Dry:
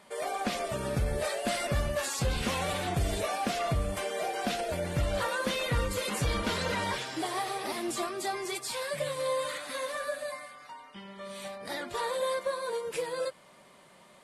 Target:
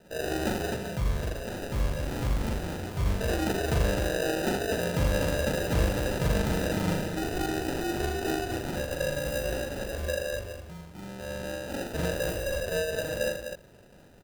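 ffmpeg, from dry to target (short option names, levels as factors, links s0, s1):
-filter_complex "[0:a]asettb=1/sr,asplit=3[s0][s1][s2];[s0]atrim=end=0.674[s3];[s1]atrim=start=0.67:end=3.21,asetpts=PTS-STARTPTS,afade=t=in:d=0.004:c=qsin,afade=t=out:st=2.536:d=0.004:c=qsin,acrossover=split=150|3000[s4][s5][s6];[s5]acompressor=threshold=0.00891:ratio=6[s7];[s4][s7][s6]amix=inputs=3:normalize=0[s8];[s2]atrim=start=3.206[s9];[s3][s8]acrossfade=d=0.004:c1=hsin:c2=qsin[s10];[s10][s9]acrossfade=d=0.004:c1=qsin:c2=hsin,acrusher=samples=40:mix=1:aa=0.000001,aecho=1:1:40.82|81.63|253.6:0.708|0.562|0.562"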